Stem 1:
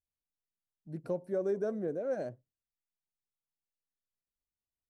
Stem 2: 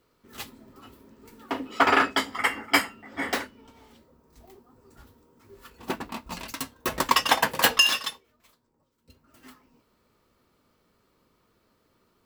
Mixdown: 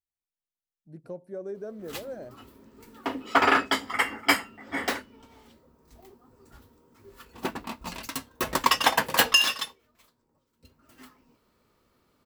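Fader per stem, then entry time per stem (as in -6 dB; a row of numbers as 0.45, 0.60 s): -4.5, -0.5 dB; 0.00, 1.55 s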